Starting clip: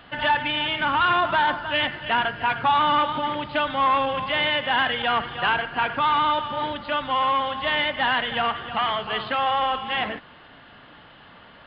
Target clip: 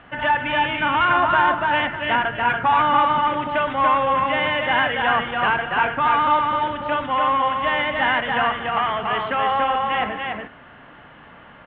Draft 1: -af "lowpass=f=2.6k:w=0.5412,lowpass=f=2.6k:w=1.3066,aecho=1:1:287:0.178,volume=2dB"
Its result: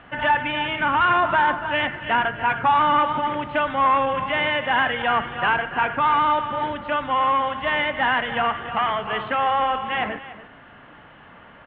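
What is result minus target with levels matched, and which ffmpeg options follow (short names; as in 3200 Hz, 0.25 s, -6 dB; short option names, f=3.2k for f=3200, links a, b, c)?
echo-to-direct -12 dB
-af "lowpass=f=2.6k:w=0.5412,lowpass=f=2.6k:w=1.3066,aecho=1:1:287:0.708,volume=2dB"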